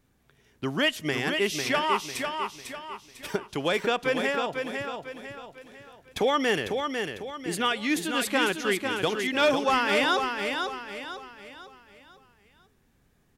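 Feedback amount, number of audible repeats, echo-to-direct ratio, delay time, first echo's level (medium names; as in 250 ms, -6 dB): 40%, 4, -4.5 dB, 499 ms, -5.5 dB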